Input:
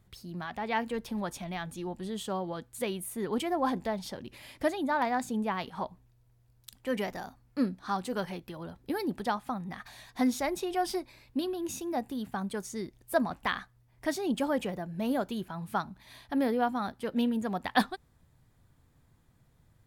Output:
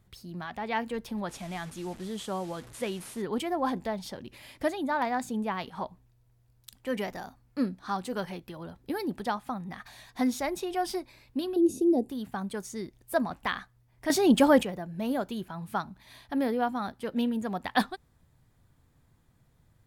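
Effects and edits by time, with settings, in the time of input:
1.29–3.22 s: one-bit delta coder 64 kbps, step -43.5 dBFS
11.56–12.09 s: FFT filter 150 Hz 0 dB, 390 Hz +15 dB, 700 Hz -2 dB, 1.4 kHz -25 dB, 4.3 kHz -6 dB, 6.8 kHz -6 dB, 11 kHz +1 dB, 15 kHz -17 dB
14.10–14.63 s: gain +9.5 dB

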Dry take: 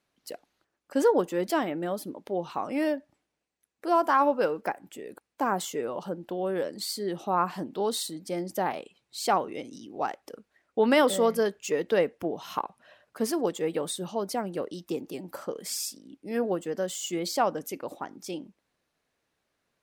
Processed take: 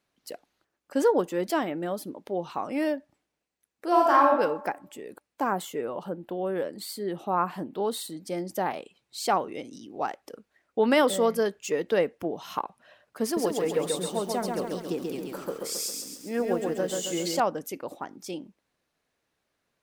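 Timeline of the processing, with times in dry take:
3.87–4.29 s: reverb throw, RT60 0.85 s, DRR -1 dB
5.53–8.10 s: peaking EQ 5.7 kHz -8.5 dB 1 oct
13.23–17.40 s: bit-crushed delay 135 ms, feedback 55%, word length 9-bit, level -3 dB

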